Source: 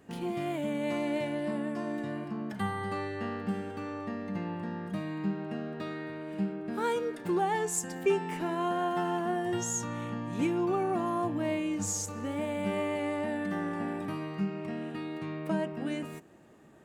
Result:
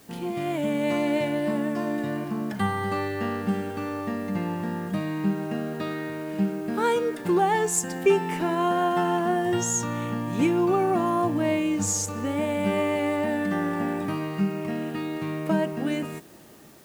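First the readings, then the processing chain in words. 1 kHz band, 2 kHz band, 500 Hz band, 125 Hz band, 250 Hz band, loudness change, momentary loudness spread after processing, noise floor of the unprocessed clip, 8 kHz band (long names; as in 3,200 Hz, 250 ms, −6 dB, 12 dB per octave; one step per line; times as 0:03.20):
+7.0 dB, +7.0 dB, +7.0 dB, +7.0 dB, +7.0 dB, +7.0 dB, 8 LU, −43 dBFS, +7.0 dB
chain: automatic gain control gain up to 4 dB
in parallel at −8 dB: bit-depth reduction 8 bits, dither triangular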